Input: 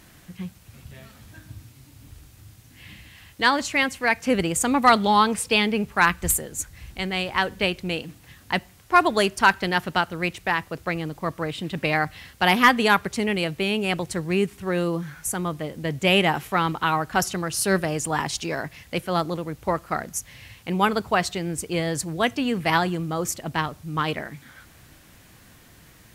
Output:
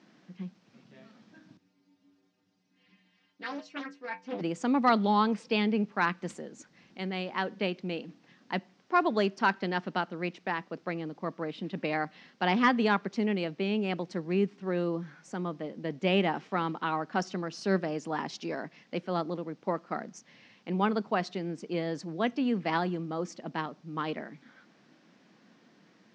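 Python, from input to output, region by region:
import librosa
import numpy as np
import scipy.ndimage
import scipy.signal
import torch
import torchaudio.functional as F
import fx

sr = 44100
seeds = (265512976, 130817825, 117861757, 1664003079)

y = fx.chain(x, sr, fx.stiff_resonator(f0_hz=91.0, decay_s=0.34, stiffness=0.008),
    fx.doppler_dist(depth_ms=0.64), at=(1.57, 4.41))
y = scipy.signal.sosfilt(scipy.signal.ellip(3, 1.0, 40, [200.0, 5500.0], 'bandpass', fs=sr, output='sos'), y)
y = fx.tilt_shelf(y, sr, db=5.0, hz=650.0)
y = y * librosa.db_to_amplitude(-6.5)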